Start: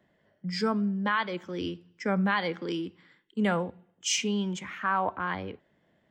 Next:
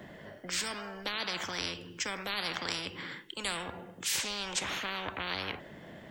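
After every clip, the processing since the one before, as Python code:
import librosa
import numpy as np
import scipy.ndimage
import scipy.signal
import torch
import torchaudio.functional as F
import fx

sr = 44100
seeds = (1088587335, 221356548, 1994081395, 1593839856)

y = fx.spectral_comp(x, sr, ratio=10.0)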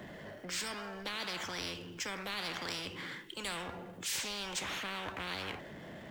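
y = fx.power_curve(x, sr, exponent=0.7)
y = y * librosa.db_to_amplitude(-8.5)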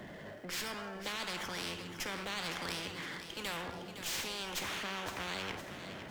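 y = fx.echo_feedback(x, sr, ms=511, feedback_pct=49, wet_db=-10)
y = fx.running_max(y, sr, window=3)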